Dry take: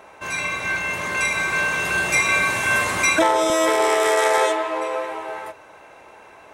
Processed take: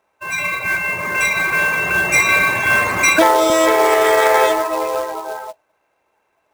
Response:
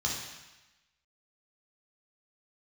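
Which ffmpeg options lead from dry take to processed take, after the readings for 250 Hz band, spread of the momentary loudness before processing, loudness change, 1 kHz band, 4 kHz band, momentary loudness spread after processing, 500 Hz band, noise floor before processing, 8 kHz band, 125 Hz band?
+5.0 dB, 11 LU, +4.5 dB, +5.0 dB, +3.0 dB, 10 LU, +5.0 dB, −46 dBFS, +2.5 dB, +3.5 dB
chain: -filter_complex "[0:a]afftdn=noise_reduction=26:noise_floor=-28,acrossover=split=3000[link_01][link_02];[link_01]acrusher=bits=3:mode=log:mix=0:aa=0.000001[link_03];[link_03][link_02]amix=inputs=2:normalize=0,volume=5dB"

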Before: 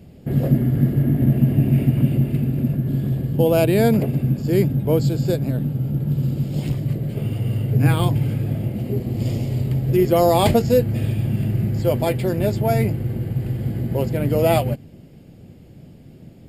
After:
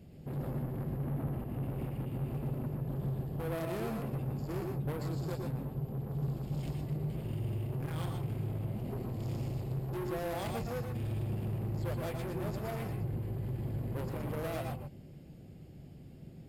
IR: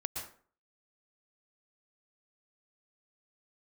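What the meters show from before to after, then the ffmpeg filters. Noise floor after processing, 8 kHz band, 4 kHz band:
−52 dBFS, −17.0 dB, −18.0 dB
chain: -filter_complex "[0:a]alimiter=limit=-11dB:level=0:latency=1:release=258,asoftclip=type=tanh:threshold=-26.5dB[link_01];[1:a]atrim=start_sample=2205,afade=type=out:start_time=0.18:duration=0.01,atrim=end_sample=8379[link_02];[link_01][link_02]afir=irnorm=-1:irlink=0,volume=-8dB"

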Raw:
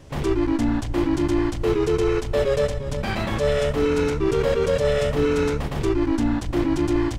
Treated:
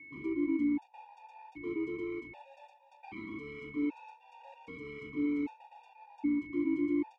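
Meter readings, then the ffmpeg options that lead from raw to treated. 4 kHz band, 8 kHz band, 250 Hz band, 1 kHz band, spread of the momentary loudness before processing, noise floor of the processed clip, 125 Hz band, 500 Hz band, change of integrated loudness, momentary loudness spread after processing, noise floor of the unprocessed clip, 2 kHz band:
below −25 dB, below −35 dB, −10.0 dB, −19.0 dB, 4 LU, −62 dBFS, −29.5 dB, −22.0 dB, −13.0 dB, 22 LU, −28 dBFS, −14.5 dB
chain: -filter_complex "[0:a]aeval=exprs='val(0)+0.0178*sin(2*PI*2200*n/s)':channel_layout=same,asplit=3[link_01][link_02][link_03];[link_01]bandpass=frequency=300:width_type=q:width=8,volume=0dB[link_04];[link_02]bandpass=frequency=870:width_type=q:width=8,volume=-6dB[link_05];[link_03]bandpass=frequency=2240:width_type=q:width=8,volume=-9dB[link_06];[link_04][link_05][link_06]amix=inputs=3:normalize=0,afftfilt=real='re*gt(sin(2*PI*0.64*pts/sr)*(1-2*mod(floor(b*sr/1024/480),2)),0)':imag='im*gt(sin(2*PI*0.64*pts/sr)*(1-2*mod(floor(b*sr/1024/480),2)),0)':win_size=1024:overlap=0.75,volume=-4dB"

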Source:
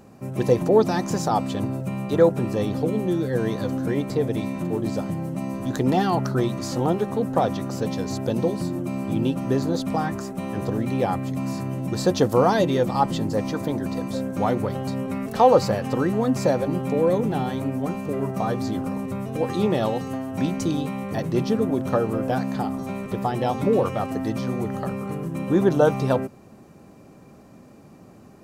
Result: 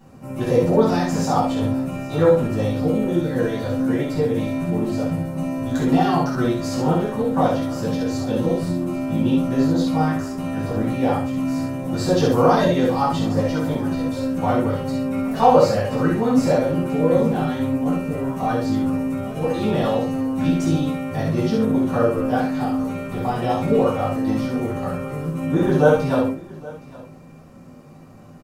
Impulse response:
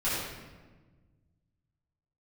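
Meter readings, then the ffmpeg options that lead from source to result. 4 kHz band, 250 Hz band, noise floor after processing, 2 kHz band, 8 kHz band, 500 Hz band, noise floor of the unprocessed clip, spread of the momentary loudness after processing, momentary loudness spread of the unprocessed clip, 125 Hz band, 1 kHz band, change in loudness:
+2.0 dB, +4.0 dB, −42 dBFS, +3.5 dB, +1.0 dB, +2.5 dB, −48 dBFS, 8 LU, 9 LU, +3.0 dB, +3.0 dB, +3.0 dB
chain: -filter_complex "[0:a]aecho=1:1:68|816:0.355|0.1[link_01];[1:a]atrim=start_sample=2205,atrim=end_sample=3969[link_02];[link_01][link_02]afir=irnorm=-1:irlink=0,volume=-5dB"

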